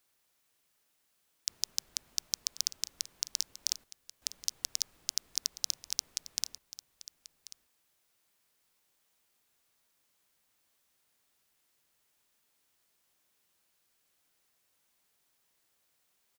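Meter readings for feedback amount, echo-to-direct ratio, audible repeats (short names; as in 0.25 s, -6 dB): no steady repeat, -16.0 dB, 1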